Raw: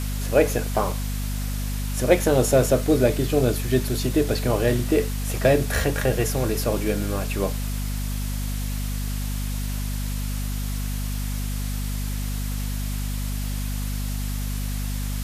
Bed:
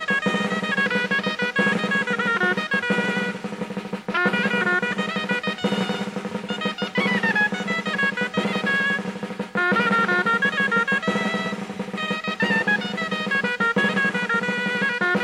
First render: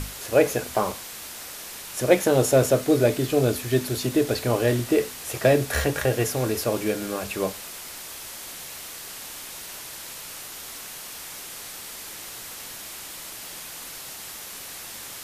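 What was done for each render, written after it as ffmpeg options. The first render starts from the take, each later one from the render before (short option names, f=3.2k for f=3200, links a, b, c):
-af "bandreject=f=50:t=h:w=6,bandreject=f=100:t=h:w=6,bandreject=f=150:t=h:w=6,bandreject=f=200:t=h:w=6,bandreject=f=250:t=h:w=6"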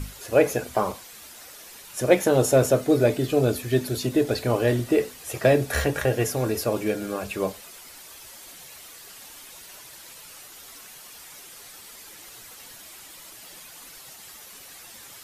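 -af "afftdn=nr=9:nf=-39"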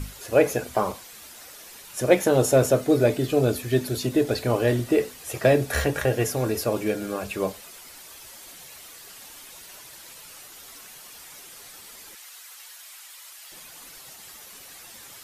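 -filter_complex "[0:a]asettb=1/sr,asplit=3[a][b][c];[a]atrim=end=12.154[d];[b]atrim=start=12.15:end=13.52,asetpts=PTS-STARTPTS,afade=t=in:d=0.004:c=qsin,afade=t=out:st=1.366:d=0.004:c=qsin,highpass=1k[e];[c]atrim=start=13.516[f];[d][e]acrossfade=d=0.004:c1=hsin:c2=qsin[g];[g][f]acrossfade=d=0.004:c1=qsin:c2=hsin"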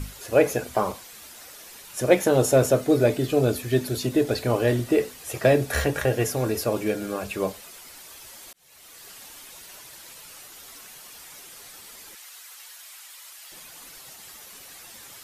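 -filter_complex "[0:a]asplit=2[a][b];[a]atrim=end=8.53,asetpts=PTS-STARTPTS,afade=t=out:st=8.526:d=0.004:c=hsin[c];[b]atrim=start=8.53,asetpts=PTS-STARTPTS,afade=t=in:d=0.53[d];[c][d]concat=n=2:v=0:a=1"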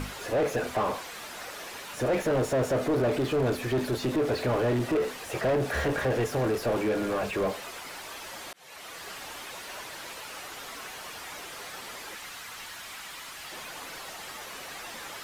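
-filter_complex "[0:a]asoftclip=type=hard:threshold=-21dB,asplit=2[a][b];[b]highpass=f=720:p=1,volume=24dB,asoftclip=type=tanh:threshold=-21dB[c];[a][c]amix=inputs=2:normalize=0,lowpass=f=1.2k:p=1,volume=-6dB"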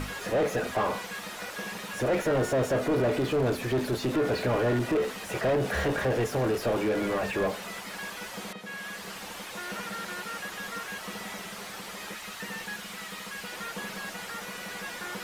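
-filter_complex "[1:a]volume=-18.5dB[a];[0:a][a]amix=inputs=2:normalize=0"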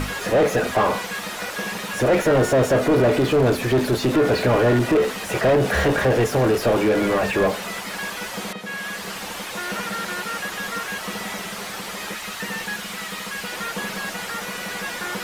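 -af "volume=8.5dB"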